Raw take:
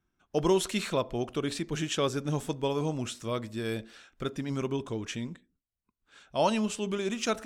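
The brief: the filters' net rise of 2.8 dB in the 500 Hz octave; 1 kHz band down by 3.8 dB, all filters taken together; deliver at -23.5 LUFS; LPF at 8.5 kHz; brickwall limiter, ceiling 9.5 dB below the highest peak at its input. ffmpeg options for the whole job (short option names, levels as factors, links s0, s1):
-af "lowpass=8500,equalizer=f=500:t=o:g=5,equalizer=f=1000:t=o:g=-6.5,volume=3.16,alimiter=limit=0.237:level=0:latency=1"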